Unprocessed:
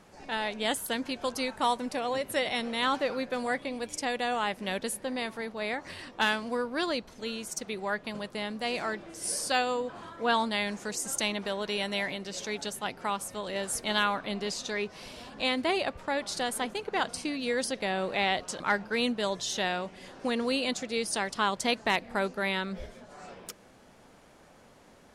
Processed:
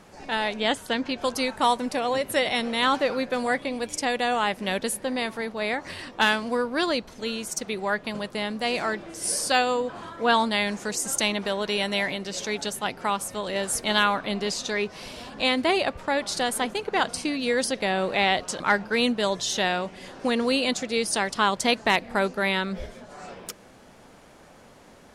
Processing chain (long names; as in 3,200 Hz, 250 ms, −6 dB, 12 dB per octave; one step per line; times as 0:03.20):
0:00.60–0:01.18: low-pass filter 5,300 Hz 12 dB per octave
level +5.5 dB